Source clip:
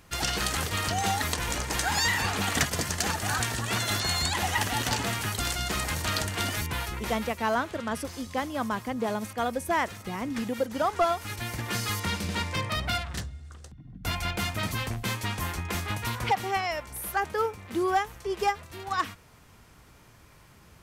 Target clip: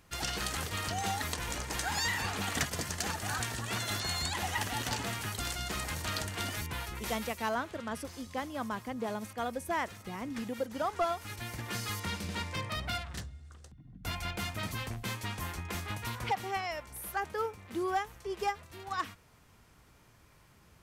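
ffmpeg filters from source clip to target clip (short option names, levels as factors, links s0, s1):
-filter_complex "[0:a]asettb=1/sr,asplit=3[s0][s1][s2];[s0]atrim=end=6.954[s3];[s1]atrim=start=6.95:end=7.49,asetpts=PTS-STARTPTS,afade=t=in:d=0.004:c=qsin,afade=t=out:st=0.536:d=0.004:c=qsin,highshelf=f=3500:g=7.5[s4];[s2]atrim=start=7.486[s5];[s3][s4]acrossfade=d=0.004:c1=hsin:c2=qsin[s6];[s6][s5]acrossfade=d=0.004:c1=qsin:c2=hsin,volume=0.473"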